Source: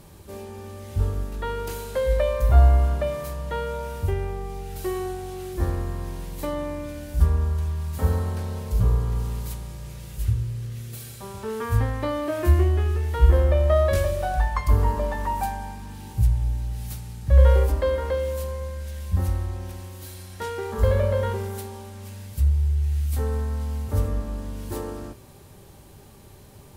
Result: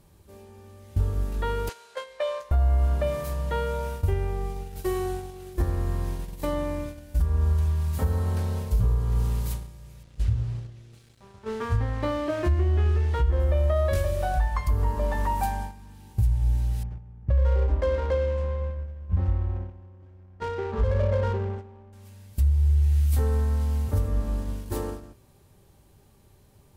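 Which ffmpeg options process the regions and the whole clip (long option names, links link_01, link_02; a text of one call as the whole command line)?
ffmpeg -i in.wav -filter_complex "[0:a]asettb=1/sr,asplit=3[link_01][link_02][link_03];[link_01]atrim=end=1.694[link_04];[link_02]atrim=start=1.69:end=2.51,asetpts=PTS-STARTPTS,afade=type=in:duration=0.004:curve=qsin,afade=type=out:start_time=0.816:duration=0.004:curve=qsin,highpass=730,lowpass=6700,asplit=2[link_05][link_06];[link_06]adelay=20,volume=-5.5dB[link_07];[link_05][link_07]amix=inputs=2:normalize=0,atrim=end_sample=36162[link_08];[link_03]atrim=start=2.506[link_09];[link_04][link_08]acrossfade=duration=0.004:curve1=hsin:curve2=qsin[link_10];[link_10][link_09]acrossfade=duration=0.004:curve1=qsin:curve2=hsin,asettb=1/sr,asplit=3[link_11][link_12][link_13];[link_11]atrim=end=10.034[link_14];[link_12]atrim=start=10.03:end=13.4,asetpts=PTS-STARTPTS,afade=type=in:duration=0.004:curve=qsin,afade=type=out:start_time=3.366:duration=0.004:curve=qsin,lowpass=5700,aeval=exprs='sgn(val(0))*max(abs(val(0))-0.00668,0)':channel_layout=same[link_15];[link_13]atrim=start=13.396[link_16];[link_14][link_15]acrossfade=duration=0.004:curve1=hsin:curve2=qsin[link_17];[link_17][link_16]acrossfade=duration=0.004:curve1=qsin:curve2=hsin,asettb=1/sr,asplit=3[link_18][link_19][link_20];[link_18]atrim=end=16.834[link_21];[link_19]atrim=start=16.83:end=21.93,asetpts=PTS-STARTPTS,afade=type=in:duration=0.004:curve=qsin,afade=type=out:start_time=5.096:duration=0.004:curve=qsin,lowpass=frequency=7800:width=0.5412,lowpass=frequency=7800:width=1.3066,equalizer=frequency=4000:width=4.7:gain=-12,adynamicsmooth=sensitivity=5.5:basefreq=640[link_22];[link_20]atrim=start=21.926[link_23];[link_21][link_22]acrossfade=duration=0.004:curve1=hsin:curve2=qsin[link_24];[link_24][link_23]acrossfade=duration=0.004:curve1=qsin:curve2=hsin,agate=range=-11dB:threshold=-32dB:ratio=16:detection=peak,lowshelf=frequency=110:gain=4.5,alimiter=limit=-15dB:level=0:latency=1:release=303" out.wav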